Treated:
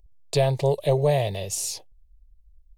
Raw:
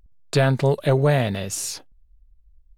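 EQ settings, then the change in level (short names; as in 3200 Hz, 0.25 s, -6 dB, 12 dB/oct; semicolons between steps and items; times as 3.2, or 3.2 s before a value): fixed phaser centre 590 Hz, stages 4; 0.0 dB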